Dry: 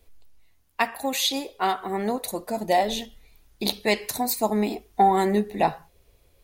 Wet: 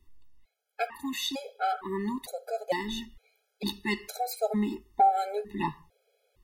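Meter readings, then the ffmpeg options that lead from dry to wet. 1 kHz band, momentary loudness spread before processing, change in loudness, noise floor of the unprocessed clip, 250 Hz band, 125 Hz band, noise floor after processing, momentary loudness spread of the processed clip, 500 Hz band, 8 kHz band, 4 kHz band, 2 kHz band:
-4.5 dB, 9 LU, -6.5 dB, -62 dBFS, -5.5 dB, -6.5 dB, -79 dBFS, 11 LU, -8.0 dB, -11.0 dB, -8.0 dB, -6.5 dB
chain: -af "highshelf=f=5.3k:g=-7.5,afftfilt=real='re*gt(sin(2*PI*1.1*pts/sr)*(1-2*mod(floor(b*sr/1024/430),2)),0)':imag='im*gt(sin(2*PI*1.1*pts/sr)*(1-2*mod(floor(b*sr/1024/430),2)),0)':win_size=1024:overlap=0.75,volume=-2.5dB"

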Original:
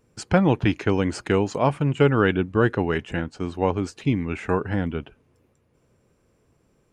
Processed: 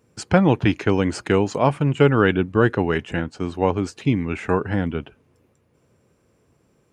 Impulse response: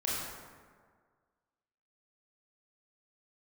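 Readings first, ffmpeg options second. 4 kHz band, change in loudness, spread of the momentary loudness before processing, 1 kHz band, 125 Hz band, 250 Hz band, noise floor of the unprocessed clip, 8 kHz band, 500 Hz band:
+2.5 dB, +2.5 dB, 8 LU, +2.5 dB, +2.0 dB, +2.5 dB, -65 dBFS, +2.5 dB, +2.5 dB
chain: -af "highpass=64,volume=2.5dB"

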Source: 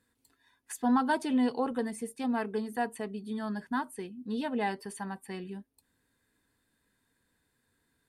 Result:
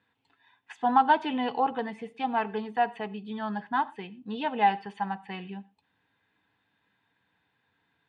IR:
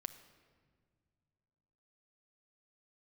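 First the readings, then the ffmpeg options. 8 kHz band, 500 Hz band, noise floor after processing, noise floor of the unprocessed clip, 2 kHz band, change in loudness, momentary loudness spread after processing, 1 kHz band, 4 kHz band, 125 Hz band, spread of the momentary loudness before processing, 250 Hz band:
under -20 dB, +1.5 dB, -75 dBFS, -77 dBFS, +4.5 dB, +4.0 dB, 14 LU, +9.5 dB, +5.5 dB, n/a, 13 LU, -3.0 dB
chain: -filter_complex "[0:a]highpass=130,equalizer=f=240:t=q:w=4:g=-8,equalizer=f=370:t=q:w=4:g=-7,equalizer=f=540:t=q:w=4:g=-5,equalizer=f=820:t=q:w=4:g=8,lowpass=f=3.2k:w=0.5412,lowpass=f=3.2k:w=1.3066,asplit=2[a][b];[1:a]atrim=start_sample=2205,atrim=end_sample=3528,asetrate=27342,aresample=44100[c];[b][c]afir=irnorm=-1:irlink=0,volume=1.5dB[d];[a][d]amix=inputs=2:normalize=0,aexciter=amount=1.8:drive=5:freq=2.5k,volume=-2dB"

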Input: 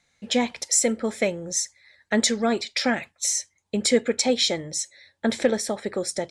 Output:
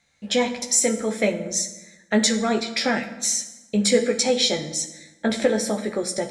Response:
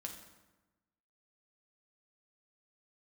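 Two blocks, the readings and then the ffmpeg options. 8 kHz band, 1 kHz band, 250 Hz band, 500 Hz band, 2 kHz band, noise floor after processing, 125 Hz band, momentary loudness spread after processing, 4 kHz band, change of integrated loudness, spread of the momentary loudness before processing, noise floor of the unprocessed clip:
+1.5 dB, +1.5 dB, +2.0 dB, +2.0 dB, +1.5 dB, -57 dBFS, +4.0 dB, 7 LU, +1.5 dB, +1.5 dB, 7 LU, -74 dBFS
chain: -filter_complex "[0:a]asplit=2[a][b];[1:a]atrim=start_sample=2205,adelay=14[c];[b][c]afir=irnorm=-1:irlink=0,volume=0dB[d];[a][d]amix=inputs=2:normalize=0"

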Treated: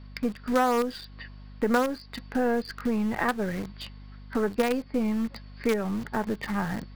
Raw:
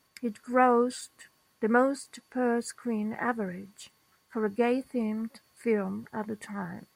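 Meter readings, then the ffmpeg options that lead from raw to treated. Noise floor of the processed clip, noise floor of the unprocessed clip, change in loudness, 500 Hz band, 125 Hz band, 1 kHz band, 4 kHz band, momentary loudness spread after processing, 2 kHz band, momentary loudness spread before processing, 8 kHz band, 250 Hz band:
-47 dBFS, -69 dBFS, +1.5 dB, +0.5 dB, +5.5 dB, +0.5 dB, +8.0 dB, 15 LU, +2.0 dB, 14 LU, -0.5 dB, +3.0 dB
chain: -filter_complex "[0:a]aresample=11025,aresample=44100,asplit=2[a][b];[b]acrusher=bits=4:dc=4:mix=0:aa=0.000001,volume=-5dB[c];[a][c]amix=inputs=2:normalize=0,aeval=exprs='val(0)+0.00251*(sin(2*PI*50*n/s)+sin(2*PI*2*50*n/s)/2+sin(2*PI*3*50*n/s)/3+sin(2*PI*4*50*n/s)/4+sin(2*PI*5*50*n/s)/5)':c=same,acompressor=threshold=-35dB:ratio=2.5,volume=8.5dB"

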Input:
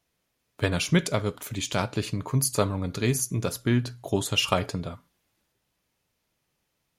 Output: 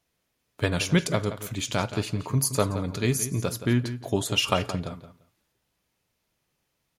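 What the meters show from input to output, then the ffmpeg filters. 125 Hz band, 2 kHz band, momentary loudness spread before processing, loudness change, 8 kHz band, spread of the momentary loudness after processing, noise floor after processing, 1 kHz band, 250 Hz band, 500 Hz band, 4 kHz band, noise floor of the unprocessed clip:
+0.5 dB, 0.0 dB, 8 LU, 0.0 dB, 0.0 dB, 8 LU, -77 dBFS, +0.5 dB, +0.5 dB, +0.5 dB, 0.0 dB, -77 dBFS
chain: -filter_complex "[0:a]asplit=2[a][b];[b]adelay=172,lowpass=f=4.8k:p=1,volume=-12dB,asplit=2[c][d];[d]adelay=172,lowpass=f=4.8k:p=1,volume=0.17[e];[a][c][e]amix=inputs=3:normalize=0"

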